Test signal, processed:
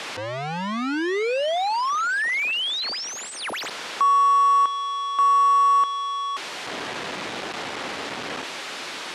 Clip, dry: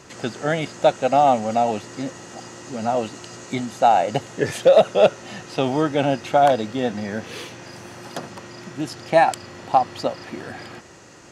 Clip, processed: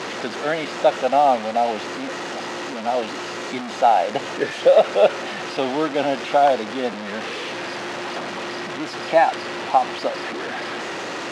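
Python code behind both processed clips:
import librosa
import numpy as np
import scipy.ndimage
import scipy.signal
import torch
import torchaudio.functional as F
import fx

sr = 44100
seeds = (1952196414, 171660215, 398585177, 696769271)

y = fx.delta_mod(x, sr, bps=64000, step_db=-20.5)
y = fx.bandpass_edges(y, sr, low_hz=280.0, high_hz=3600.0)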